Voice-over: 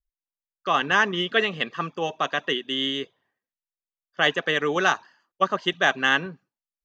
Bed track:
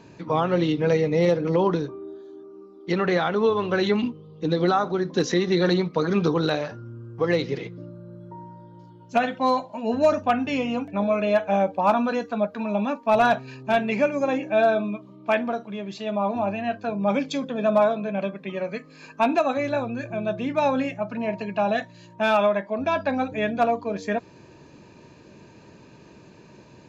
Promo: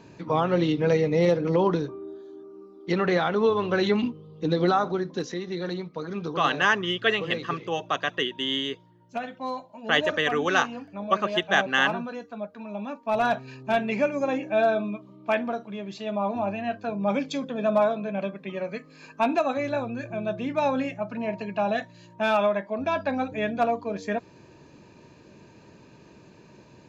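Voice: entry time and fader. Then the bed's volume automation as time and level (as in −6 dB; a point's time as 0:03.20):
5.70 s, −1.5 dB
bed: 0:04.90 −1 dB
0:05.33 −10.5 dB
0:12.69 −10.5 dB
0:13.46 −2.5 dB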